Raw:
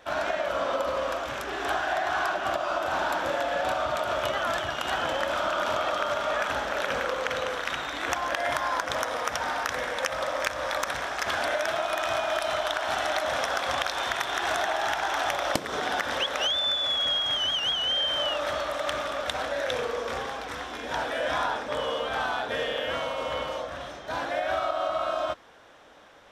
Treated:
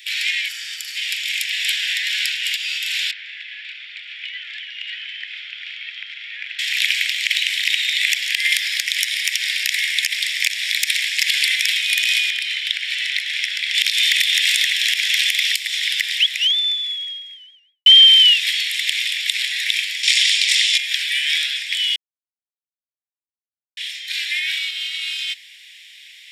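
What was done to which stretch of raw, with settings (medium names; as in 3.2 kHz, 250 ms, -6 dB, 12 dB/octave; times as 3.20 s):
0.48–0.96 s: time-frequency box 1.9–4.4 kHz -8 dB
3.11–6.59 s: tape spacing loss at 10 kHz 45 dB
12.30–13.75 s: low-pass 1.8 kHz 6 dB/octave
15.37–17.86 s: studio fade out
20.03–20.78 s: frequency weighting ITU-R 468
21.96–23.77 s: mute
whole clip: steep high-pass 2 kHz 72 dB/octave; band-stop 6.1 kHz, Q 6.4; loudness maximiser +20 dB; trim -1 dB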